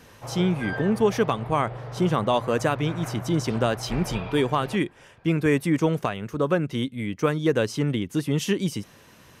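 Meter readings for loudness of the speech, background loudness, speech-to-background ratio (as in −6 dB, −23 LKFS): −25.0 LKFS, −36.0 LKFS, 11.0 dB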